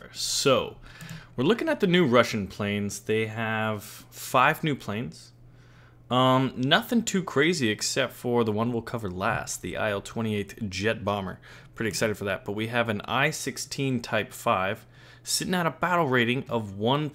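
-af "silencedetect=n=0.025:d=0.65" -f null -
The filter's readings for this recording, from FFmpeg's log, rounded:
silence_start: 5.09
silence_end: 6.11 | silence_duration: 1.01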